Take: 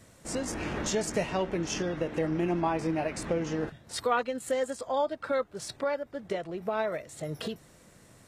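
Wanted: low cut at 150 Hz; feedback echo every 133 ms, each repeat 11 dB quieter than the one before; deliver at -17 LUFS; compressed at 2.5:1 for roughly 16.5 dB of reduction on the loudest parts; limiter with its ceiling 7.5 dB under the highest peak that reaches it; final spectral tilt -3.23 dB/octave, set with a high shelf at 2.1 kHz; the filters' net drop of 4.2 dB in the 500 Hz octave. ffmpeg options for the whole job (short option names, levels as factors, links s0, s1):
-af "highpass=150,equalizer=f=500:t=o:g=-5.5,highshelf=f=2100:g=7,acompressor=threshold=0.00398:ratio=2.5,alimiter=level_in=3.98:limit=0.0631:level=0:latency=1,volume=0.251,aecho=1:1:133|266|399:0.282|0.0789|0.0221,volume=29.9"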